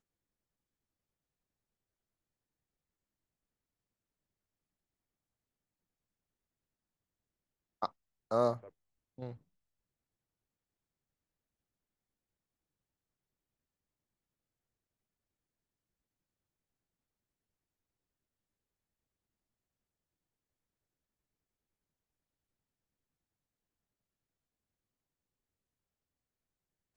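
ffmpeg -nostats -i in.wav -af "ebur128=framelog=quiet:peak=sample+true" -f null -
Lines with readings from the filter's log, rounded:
Integrated loudness:
  I:         -35.2 LUFS
  Threshold: -47.4 LUFS
Loudness range:
  LRA:        16.6 LU
  Threshold: -61.7 LUFS
  LRA low:   -56.5 LUFS
  LRA high:  -39.9 LUFS
Sample peak:
  Peak:      -16.4 dBFS
True peak:
  Peak:      -16.4 dBFS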